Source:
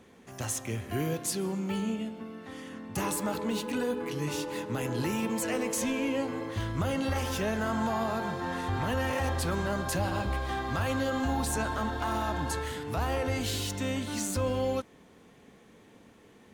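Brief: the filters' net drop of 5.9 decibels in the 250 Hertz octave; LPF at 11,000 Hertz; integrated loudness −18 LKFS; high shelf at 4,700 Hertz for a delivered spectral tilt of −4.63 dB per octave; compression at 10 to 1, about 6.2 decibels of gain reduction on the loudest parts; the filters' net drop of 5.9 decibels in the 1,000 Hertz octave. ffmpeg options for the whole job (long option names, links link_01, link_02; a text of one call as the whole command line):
ffmpeg -i in.wav -af "lowpass=11000,equalizer=frequency=250:width_type=o:gain=-7,equalizer=frequency=1000:width_type=o:gain=-7,highshelf=frequency=4700:gain=-5,acompressor=threshold=-34dB:ratio=10,volume=21dB" out.wav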